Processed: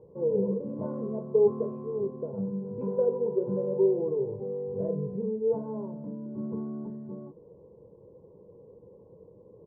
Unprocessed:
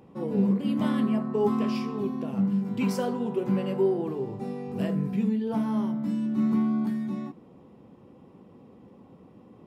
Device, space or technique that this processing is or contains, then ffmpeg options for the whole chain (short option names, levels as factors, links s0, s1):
under water: -af "lowpass=f=780:w=0.5412,lowpass=f=780:w=1.3066,equalizer=f=460:t=o:w=0.29:g=9,aecho=1:1:2:0.73,volume=0.631"